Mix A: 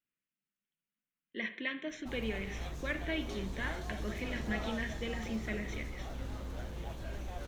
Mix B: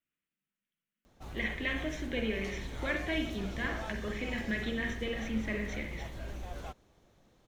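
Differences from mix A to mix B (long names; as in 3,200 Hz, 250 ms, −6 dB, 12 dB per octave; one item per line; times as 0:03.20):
speech: send +9.0 dB
background: entry −0.85 s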